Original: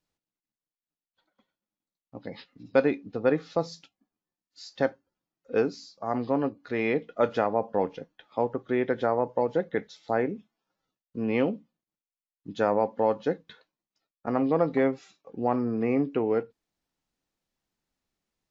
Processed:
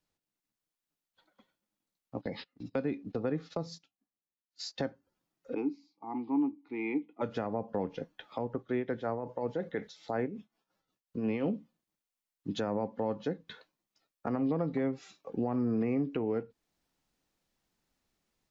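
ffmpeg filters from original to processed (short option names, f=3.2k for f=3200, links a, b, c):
-filter_complex "[0:a]asettb=1/sr,asplit=3[a][b][c];[a]atrim=end=2.174[d];[b]atrim=start=2.17:end=4.85,asetpts=PTS-STARTPTS,afade=t=in:d=0.004:c=qsin,afade=t=out:st=2.676:d=0.004:c=qsin,agate=range=-17dB:threshold=-50dB:ratio=16:release=100:detection=peak[e];[c]atrim=start=4.846[f];[d][e]acrossfade=d=0.004:c1=hsin:c2=qsin[g];[g][f]acrossfade=d=0.004:c1=qsin:c2=hsin,asplit=3[h][i][j];[h]afade=t=out:st=5.53:d=0.02[k];[i]asplit=3[l][m][n];[l]bandpass=f=300:t=q:w=8,volume=0dB[o];[m]bandpass=f=870:t=q:w=8,volume=-6dB[p];[n]bandpass=f=2.24k:t=q:w=8,volume=-9dB[q];[o][p][q]amix=inputs=3:normalize=0,afade=t=in:st=5.53:d=0.02,afade=t=out:st=7.21:d=0.02[r];[j]afade=t=in:st=7.21:d=0.02[s];[k][r][s]amix=inputs=3:normalize=0,asettb=1/sr,asplit=3[t][u][v];[t]atrim=end=8.584[w];[u]atrim=start=8.58:end=11.46,asetpts=PTS-STARTPTS,afade=t=in:d=0.004:c=qsin,afade=t=out:st=2.876:d=0.004:c=qsin,tremolo=f=5.5:d=0.67[x];[v]atrim=start=11.456[y];[w][x]acrossfade=d=0.004:c1=hsin:c2=qsin[z];[z][y]acrossfade=d=0.004:c1=qsin:c2=hsin,acrossover=split=270[aa][ab];[ab]acompressor=threshold=-33dB:ratio=4[ac];[aa][ac]amix=inputs=2:normalize=0,alimiter=level_in=2dB:limit=-24dB:level=0:latency=1:release=360,volume=-2dB,dynaudnorm=f=210:g=3:m=5dB,volume=-1dB"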